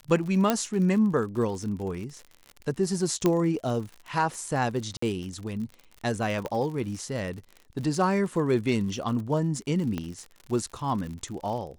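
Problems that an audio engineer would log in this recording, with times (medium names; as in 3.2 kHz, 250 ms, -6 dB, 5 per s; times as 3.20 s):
crackle 69 per s -35 dBFS
0.50 s: pop -8 dBFS
3.26 s: pop -10 dBFS
4.97–5.02 s: dropout 54 ms
6.46 s: pop -18 dBFS
9.98 s: pop -18 dBFS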